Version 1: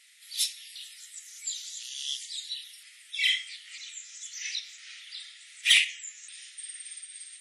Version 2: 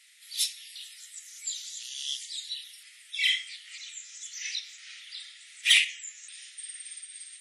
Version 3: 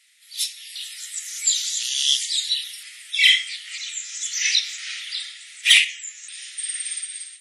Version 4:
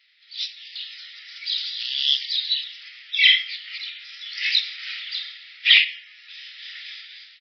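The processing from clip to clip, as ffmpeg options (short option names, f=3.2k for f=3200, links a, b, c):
-af "highpass=680"
-af "dynaudnorm=f=270:g=5:m=16.5dB,volume=-1dB"
-af "aresample=11025,aresample=44100"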